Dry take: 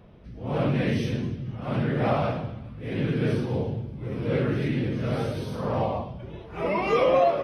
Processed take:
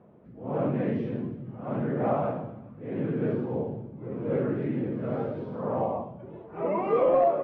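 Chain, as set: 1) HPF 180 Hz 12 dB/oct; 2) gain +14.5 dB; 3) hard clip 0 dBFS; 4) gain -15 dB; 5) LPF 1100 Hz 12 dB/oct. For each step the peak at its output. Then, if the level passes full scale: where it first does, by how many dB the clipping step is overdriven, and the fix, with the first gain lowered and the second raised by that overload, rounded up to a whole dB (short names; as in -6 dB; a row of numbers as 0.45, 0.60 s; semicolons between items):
-9.5, +5.0, 0.0, -15.0, -14.5 dBFS; step 2, 5.0 dB; step 2 +9.5 dB, step 4 -10 dB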